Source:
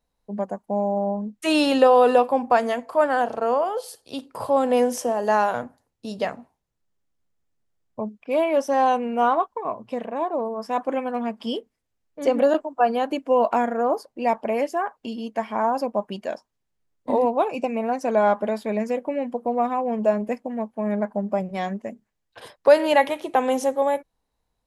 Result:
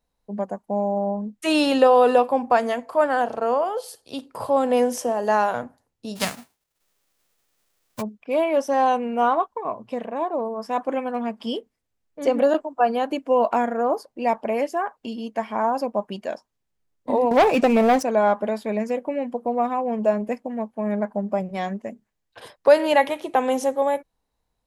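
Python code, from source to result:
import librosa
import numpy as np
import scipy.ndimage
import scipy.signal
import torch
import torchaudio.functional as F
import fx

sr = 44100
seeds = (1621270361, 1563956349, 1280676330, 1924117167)

y = fx.envelope_flatten(x, sr, power=0.3, at=(6.15, 8.01), fade=0.02)
y = fx.leveller(y, sr, passes=3, at=(17.31, 18.03))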